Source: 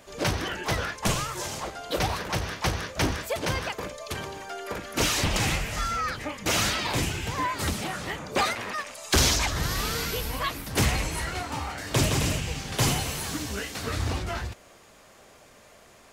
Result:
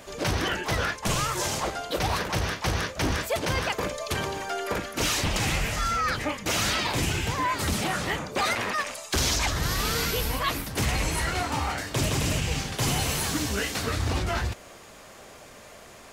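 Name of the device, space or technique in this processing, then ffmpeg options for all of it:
compression on the reversed sound: -af "areverse,acompressor=threshold=0.0355:ratio=6,areverse,volume=2"

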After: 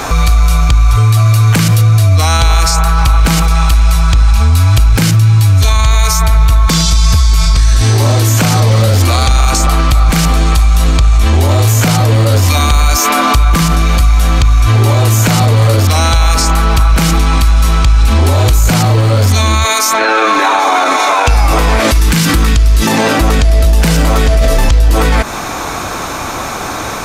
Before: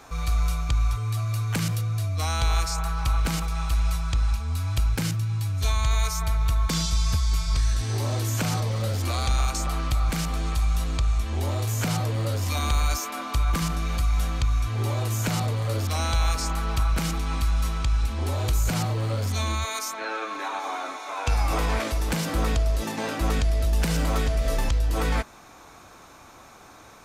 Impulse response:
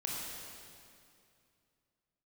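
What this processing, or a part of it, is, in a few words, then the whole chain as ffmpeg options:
loud club master: -filter_complex "[0:a]asettb=1/sr,asplit=3[s0][s1][s2];[s0]atrim=end=21.914[s3];[s1]atrim=start=21.91:end=22.87,asetpts=PTS-STARTPTS,afade=t=in:d=0.004:c=qsin,afade=t=out:st=0.956:d=0.004:c=qsin,equalizer=f=620:w=1.4:g=-15[s4];[s2]atrim=start=22.866[s5];[s3][s4]acrossfade=d=0.004:c1=hsin:c2=qsin[s6];[s6][s5]acrossfade=d=0.004:c1=qsin:c2=hsin,acompressor=threshold=0.0447:ratio=2,asoftclip=type=hard:threshold=0.106,alimiter=level_in=31.6:limit=0.891:release=50:level=0:latency=1,volume=0.891"

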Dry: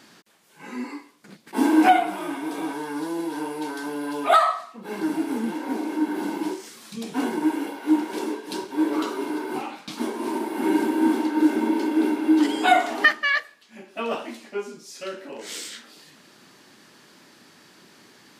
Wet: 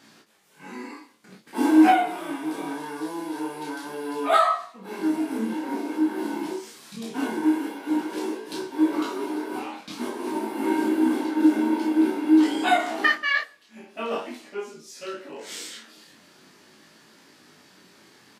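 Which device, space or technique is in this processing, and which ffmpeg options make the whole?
double-tracked vocal: -filter_complex "[0:a]asplit=2[s0][s1];[s1]adelay=32,volume=0.596[s2];[s0][s2]amix=inputs=2:normalize=0,flanger=delay=18:depth=4.8:speed=0.47"

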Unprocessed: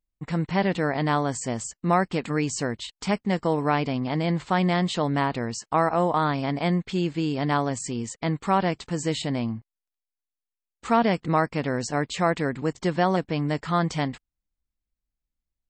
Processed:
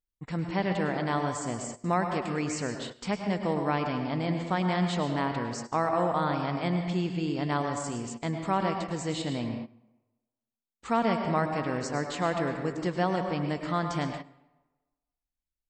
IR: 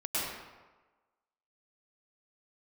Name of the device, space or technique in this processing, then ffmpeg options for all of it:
keyed gated reverb: -filter_complex "[0:a]asplit=3[s0][s1][s2];[1:a]atrim=start_sample=2205[s3];[s1][s3]afir=irnorm=-1:irlink=0[s4];[s2]apad=whole_len=692065[s5];[s4][s5]sidechaingate=range=0.2:threshold=0.01:ratio=16:detection=peak,volume=0.335[s6];[s0][s6]amix=inputs=2:normalize=0,volume=0.422"

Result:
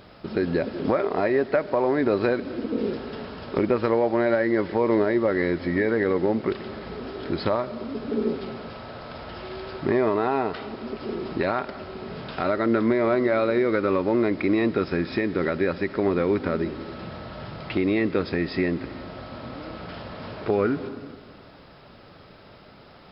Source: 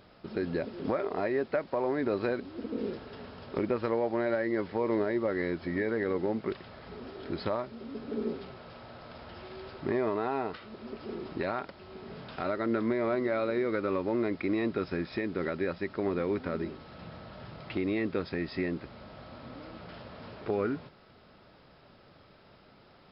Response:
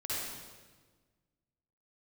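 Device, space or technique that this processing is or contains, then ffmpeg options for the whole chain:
ducked reverb: -filter_complex "[0:a]asplit=3[s0][s1][s2];[1:a]atrim=start_sample=2205[s3];[s1][s3]afir=irnorm=-1:irlink=0[s4];[s2]apad=whole_len=1019386[s5];[s4][s5]sidechaincompress=threshold=0.0126:ratio=8:attack=16:release=192,volume=0.224[s6];[s0][s6]amix=inputs=2:normalize=0,volume=2.37"

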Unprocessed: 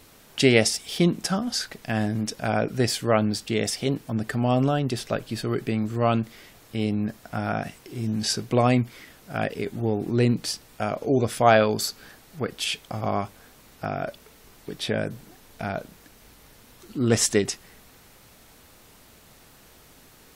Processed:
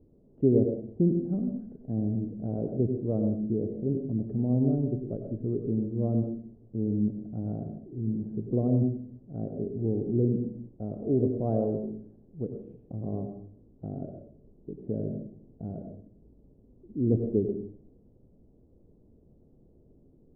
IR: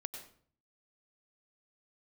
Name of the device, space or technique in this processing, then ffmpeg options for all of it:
next room: -filter_complex "[0:a]lowpass=f=440:w=0.5412,lowpass=f=440:w=1.3066[s0];[1:a]atrim=start_sample=2205[s1];[s0][s1]afir=irnorm=-1:irlink=0"

